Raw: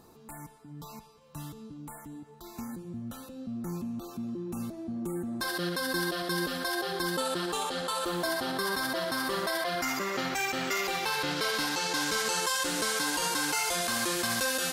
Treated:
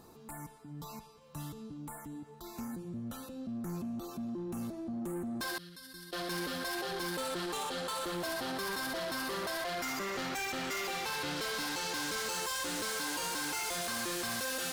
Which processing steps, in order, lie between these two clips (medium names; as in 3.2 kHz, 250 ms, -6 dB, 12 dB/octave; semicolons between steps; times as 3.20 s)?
5.58–6.13 s: amplifier tone stack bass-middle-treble 6-0-2; saturation -33.5 dBFS, distortion -9 dB